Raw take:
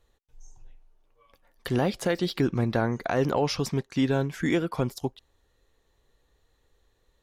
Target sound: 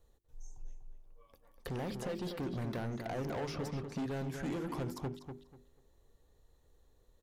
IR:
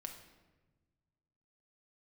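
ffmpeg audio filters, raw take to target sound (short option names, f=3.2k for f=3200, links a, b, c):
-filter_complex "[0:a]bandreject=f=50:t=h:w=6,bandreject=f=100:t=h:w=6,bandreject=f=150:t=h:w=6,bandreject=f=200:t=h:w=6,bandreject=f=250:t=h:w=6,bandreject=f=300:t=h:w=6,bandreject=f=350:t=h:w=6,bandreject=f=400:t=h:w=6,acrossover=split=940|2900|7200[a][b][c][d];[a]acompressor=threshold=-33dB:ratio=4[e];[b]acompressor=threshold=-36dB:ratio=4[f];[c]acompressor=threshold=-51dB:ratio=4[g];[d]acompressor=threshold=-60dB:ratio=4[h];[e][f][g][h]amix=inputs=4:normalize=0,equalizer=f=2.3k:w=0.48:g=-10.5,asoftclip=type=hard:threshold=-36dB,asplit=2[i][j];[j]adelay=244,lowpass=f=3.3k:p=1,volume=-6.5dB,asplit=2[k][l];[l]adelay=244,lowpass=f=3.3k:p=1,volume=0.23,asplit=2[m][n];[n]adelay=244,lowpass=f=3.3k:p=1,volume=0.23[o];[i][k][m][o]amix=inputs=4:normalize=0,volume=1dB"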